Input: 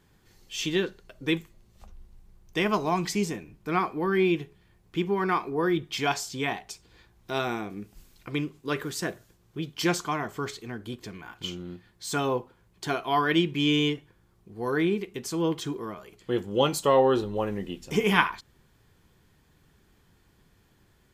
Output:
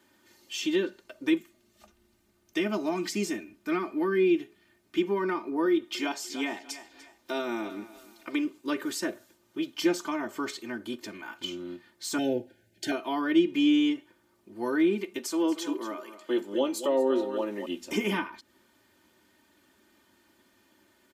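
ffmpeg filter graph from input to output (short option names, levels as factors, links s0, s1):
-filter_complex "[0:a]asettb=1/sr,asplit=3[s0][s1][s2];[s0]atrim=end=1.364[s3];[s1]atrim=start=1.36:end=5.03,asetpts=PTS-STARTPTS,afade=t=in:d=0.004:c=qsin,afade=t=out:st=3.666:d=0.004:c=qsin,equalizer=f=940:w=4.6:g=-7.5,bandreject=f=530:w=6.7[s4];[s2]atrim=start=5.026[s5];[s3][s4]acrossfade=d=0.004:c1=hsin:c2=qsin[s6];[s6][s5]acrossfade=d=0.004:c1=qsin:c2=hsin,asettb=1/sr,asplit=3[s7][s8][s9];[s7]atrim=end=5.654[s10];[s8]atrim=start=5.65:end=8.45,asetpts=PTS-STARTPTS,afade=t=in:d=0.004:c=qsin,afade=t=out:st=2.796:d=0.004:c=qsin,equalizer=f=140:t=o:w=0.61:g=-13,aecho=1:1:295|590|885:0.112|0.037|0.0122,atrim=end_sample=123480[s11];[s9]atrim=start=8.446[s12];[s10][s11]acrossfade=d=0.004:c1=hsin:c2=qsin[s13];[s13][s12]acrossfade=d=0.004:c1=qsin:c2=hsin,asettb=1/sr,asplit=3[s14][s15][s16];[s14]atrim=end=12.184[s17];[s15]atrim=start=12.18:end=12.92,asetpts=PTS-STARTPTS,afade=t=in:d=0.004:c=qsin,afade=t=out:st=0.736:d=0.004:c=qsin,asuperstop=centerf=1100:order=12:qfactor=1.7,equalizer=f=110:t=o:w=0.81:g=11[s18];[s16]atrim=start=12.916[s19];[s17][s18]acrossfade=d=0.004:c1=hsin:c2=qsin[s20];[s20][s19]acrossfade=d=0.004:c1=qsin:c2=hsin,asettb=1/sr,asplit=3[s21][s22][s23];[s21]atrim=end=15.184[s24];[s22]atrim=start=15.18:end=17.66,asetpts=PTS-STARTPTS,afade=t=in:d=0.004:c=qsin,afade=t=out:st=2.476:d=0.004:c=qsin,highpass=270,aecho=1:1:232:0.224,atrim=end_sample=109368[s25];[s23]atrim=start=17.656[s26];[s24][s25]acrossfade=d=0.004:c1=hsin:c2=qsin[s27];[s27][s26]acrossfade=d=0.004:c1=qsin:c2=hsin,highpass=210,aecho=1:1:3.3:0.88,acrossover=split=440[s28][s29];[s29]acompressor=threshold=0.0251:ratio=6[s30];[s28][s30]amix=inputs=2:normalize=0"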